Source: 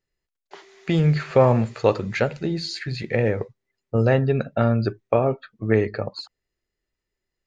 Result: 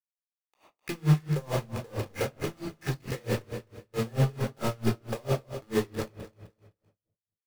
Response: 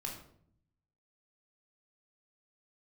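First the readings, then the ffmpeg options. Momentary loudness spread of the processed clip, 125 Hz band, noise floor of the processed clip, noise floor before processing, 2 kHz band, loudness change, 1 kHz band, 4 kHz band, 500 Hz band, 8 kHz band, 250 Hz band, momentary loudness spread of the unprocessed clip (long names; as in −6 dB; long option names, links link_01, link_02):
14 LU, −6.5 dB, below −85 dBFS, −84 dBFS, −9.5 dB, −9.0 dB, −10.5 dB, −7.5 dB, −12.0 dB, can't be measured, −8.0 dB, 12 LU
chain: -filter_complex "[0:a]highpass=71,acrossover=split=2900[link_01][link_02];[link_02]acompressor=threshold=-40dB:ratio=4:attack=1:release=60[link_03];[link_01][link_03]amix=inputs=2:normalize=0,lowpass=4100,asplit=2[link_04][link_05];[link_05]acompressor=threshold=-31dB:ratio=6,volume=0dB[link_06];[link_04][link_06]amix=inputs=2:normalize=0,asoftclip=type=tanh:threshold=-9.5dB,acrusher=bits=3:mix=0:aa=0.000001,aecho=1:1:257|514|771:0.266|0.0745|0.0209[link_07];[1:a]atrim=start_sample=2205[link_08];[link_07][link_08]afir=irnorm=-1:irlink=0,aeval=exprs='val(0)*pow(10,-29*(0.5-0.5*cos(2*PI*4.5*n/s))/20)':channel_layout=same,volume=-6dB"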